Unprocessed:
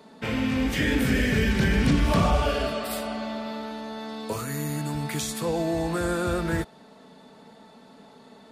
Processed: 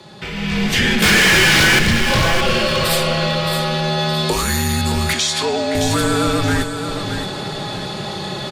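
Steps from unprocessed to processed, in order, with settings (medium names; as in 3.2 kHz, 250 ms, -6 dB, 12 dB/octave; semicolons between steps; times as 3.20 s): compression 2.5:1, threshold -44 dBFS, peak gain reduction 17.5 dB; peaking EQ 4.1 kHz +8.5 dB 1.9 oct; 1.02–1.79 s: overdrive pedal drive 33 dB, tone 4.9 kHz, clips at -25.5 dBFS; feedback delay 619 ms, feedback 30%, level -9 dB; level rider gain up to 15.5 dB; saturation -15.5 dBFS, distortion -16 dB; 5.13–5.75 s: band-pass 390–6600 Hz; frequency shift -60 Hz; trim +7 dB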